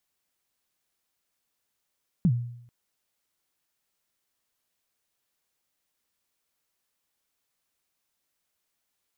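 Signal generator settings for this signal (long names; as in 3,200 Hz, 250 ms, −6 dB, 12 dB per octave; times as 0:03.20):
synth kick length 0.44 s, from 200 Hz, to 120 Hz, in 64 ms, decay 0.71 s, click off, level −15.5 dB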